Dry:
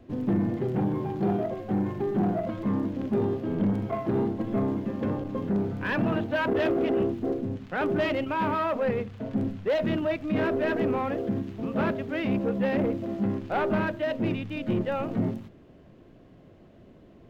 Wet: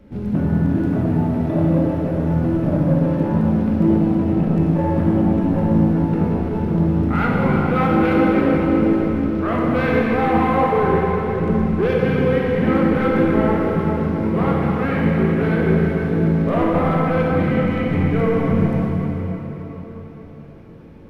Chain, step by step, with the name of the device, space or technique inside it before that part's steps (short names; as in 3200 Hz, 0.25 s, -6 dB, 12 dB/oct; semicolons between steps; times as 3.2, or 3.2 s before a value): slowed and reverbed (varispeed -18%; reverb RT60 4.6 s, pre-delay 18 ms, DRR -4.5 dB); gain +4 dB